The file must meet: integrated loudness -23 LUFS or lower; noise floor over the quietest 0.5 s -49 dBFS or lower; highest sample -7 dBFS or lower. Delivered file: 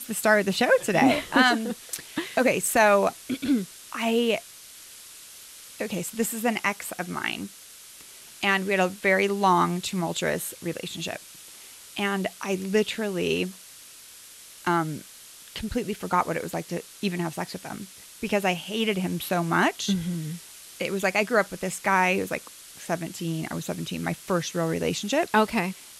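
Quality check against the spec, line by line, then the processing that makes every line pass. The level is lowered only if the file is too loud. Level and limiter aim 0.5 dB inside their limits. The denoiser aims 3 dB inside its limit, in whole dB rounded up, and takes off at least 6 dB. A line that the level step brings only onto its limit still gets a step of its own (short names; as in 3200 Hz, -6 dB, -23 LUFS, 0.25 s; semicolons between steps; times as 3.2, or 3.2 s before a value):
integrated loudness -25.5 LUFS: OK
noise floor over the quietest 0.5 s -47 dBFS: fail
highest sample -6.0 dBFS: fail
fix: denoiser 6 dB, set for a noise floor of -47 dBFS; limiter -7.5 dBFS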